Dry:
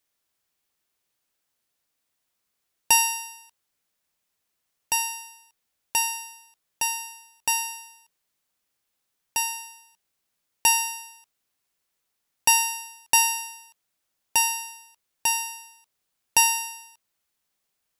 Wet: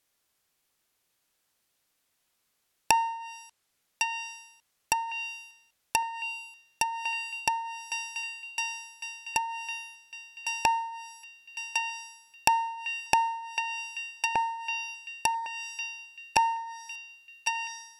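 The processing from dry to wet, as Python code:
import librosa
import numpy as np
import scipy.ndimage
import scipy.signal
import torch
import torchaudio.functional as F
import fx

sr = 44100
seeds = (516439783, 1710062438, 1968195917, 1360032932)

y = fx.echo_banded(x, sr, ms=1105, feedback_pct=58, hz=2700.0, wet_db=-7.0)
y = fx.env_lowpass_down(y, sr, base_hz=900.0, full_db=-22.5)
y = F.gain(torch.from_numpy(y), 3.5).numpy()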